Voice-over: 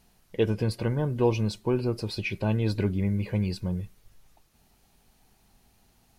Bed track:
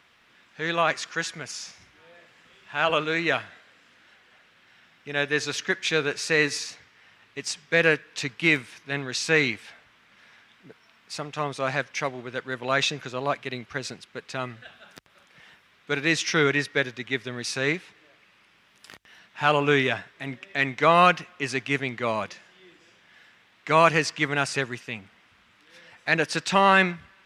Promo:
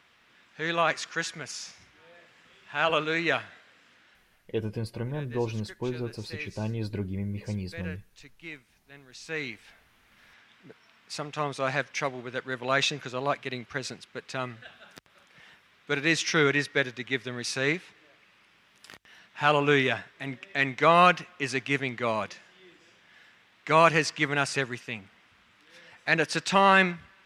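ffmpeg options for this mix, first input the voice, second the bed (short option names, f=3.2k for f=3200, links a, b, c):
-filter_complex "[0:a]adelay=4150,volume=-6dB[a];[1:a]volume=17.5dB,afade=t=out:st=3.94:d=0.6:silence=0.112202,afade=t=in:st=9.09:d=1.43:silence=0.105925[b];[a][b]amix=inputs=2:normalize=0"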